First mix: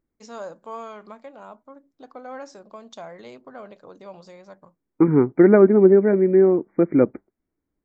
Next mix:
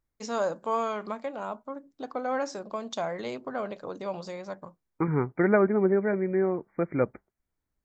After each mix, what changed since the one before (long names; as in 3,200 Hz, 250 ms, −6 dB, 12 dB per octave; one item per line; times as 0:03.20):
first voice +7.0 dB
second voice: add parametric band 300 Hz −14 dB 1.5 octaves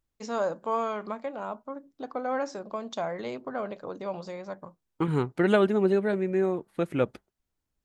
second voice: remove linear-phase brick-wall low-pass 2,400 Hz
master: add high-shelf EQ 4,100 Hz −6 dB